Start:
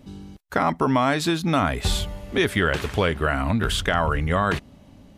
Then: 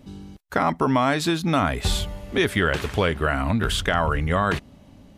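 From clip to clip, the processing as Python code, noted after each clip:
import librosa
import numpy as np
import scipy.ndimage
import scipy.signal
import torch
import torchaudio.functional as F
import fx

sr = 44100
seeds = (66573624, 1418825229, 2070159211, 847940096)

y = x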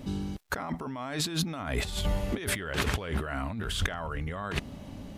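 y = fx.over_compress(x, sr, threshold_db=-31.0, ratio=-1.0)
y = fx.dmg_crackle(y, sr, seeds[0], per_s=300.0, level_db=-61.0)
y = y * librosa.db_to_amplitude(-1.5)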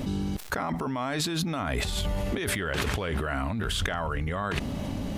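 y = fx.env_flatten(x, sr, amount_pct=70)
y = y * librosa.db_to_amplitude(-2.0)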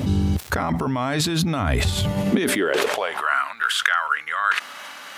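y = fx.filter_sweep_highpass(x, sr, from_hz=80.0, to_hz=1400.0, start_s=1.86, end_s=3.42, q=3.0)
y = y * librosa.db_to_amplitude(6.0)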